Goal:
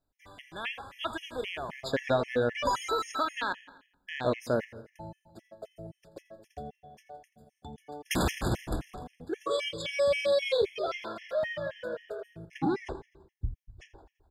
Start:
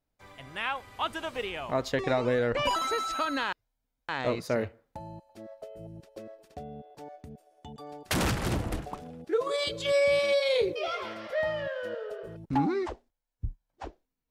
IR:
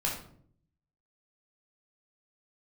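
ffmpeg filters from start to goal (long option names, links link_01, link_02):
-filter_complex "[0:a]aecho=1:1:84|168|252|336|420:0.133|0.0773|0.0449|0.026|0.0151,asplit=2[link_01][link_02];[1:a]atrim=start_sample=2205,asetrate=29106,aresample=44100[link_03];[link_02][link_03]afir=irnorm=-1:irlink=0,volume=-21.5dB[link_04];[link_01][link_04]amix=inputs=2:normalize=0,afftfilt=real='re*gt(sin(2*PI*3.8*pts/sr)*(1-2*mod(floor(b*sr/1024/1700),2)),0)':imag='im*gt(sin(2*PI*3.8*pts/sr)*(1-2*mod(floor(b*sr/1024/1700),2)),0)':win_size=1024:overlap=0.75"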